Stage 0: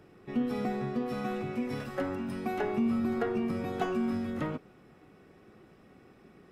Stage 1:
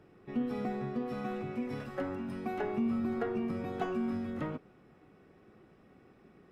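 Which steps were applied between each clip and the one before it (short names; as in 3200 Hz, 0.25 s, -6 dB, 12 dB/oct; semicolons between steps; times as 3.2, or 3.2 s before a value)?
high shelf 4000 Hz -7 dB; gain -3 dB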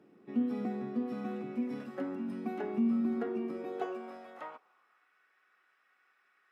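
high-pass sweep 230 Hz -> 1500 Hz, 3.18–5.09; gain -5 dB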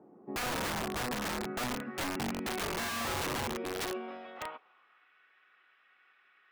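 low-pass sweep 850 Hz -> 3200 Hz, 0.28–3; wrapped overs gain 32 dB; gain +2.5 dB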